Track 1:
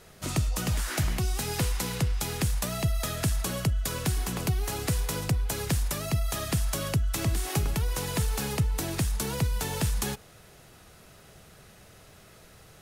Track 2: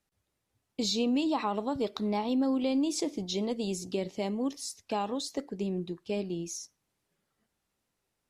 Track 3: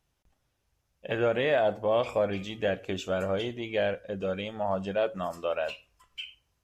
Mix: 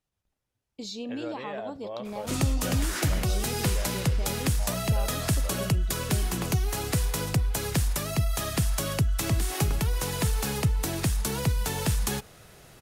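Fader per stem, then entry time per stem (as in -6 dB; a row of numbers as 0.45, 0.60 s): +1.5, -7.5, -12.0 dB; 2.05, 0.00, 0.00 s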